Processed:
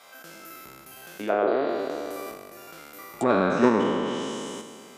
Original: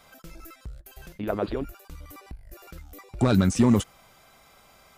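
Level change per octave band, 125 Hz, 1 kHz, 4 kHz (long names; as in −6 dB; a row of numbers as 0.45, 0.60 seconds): −11.5, +8.5, +2.0 decibels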